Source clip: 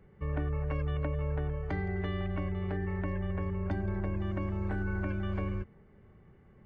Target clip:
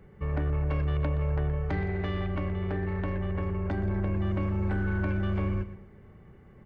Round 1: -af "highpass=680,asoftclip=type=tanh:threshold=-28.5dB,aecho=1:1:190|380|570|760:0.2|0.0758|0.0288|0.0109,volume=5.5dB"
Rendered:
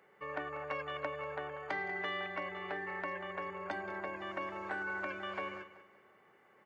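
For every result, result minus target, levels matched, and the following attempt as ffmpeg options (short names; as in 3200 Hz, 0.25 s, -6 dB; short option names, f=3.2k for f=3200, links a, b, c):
echo 68 ms late; 500 Hz band +3.5 dB
-af "highpass=680,asoftclip=type=tanh:threshold=-28.5dB,aecho=1:1:122|244|366|488:0.2|0.0758|0.0288|0.0109,volume=5.5dB"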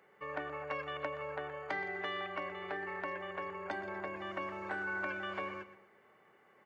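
500 Hz band +4.0 dB
-af "asoftclip=type=tanh:threshold=-28.5dB,aecho=1:1:122|244|366|488:0.2|0.0758|0.0288|0.0109,volume=5.5dB"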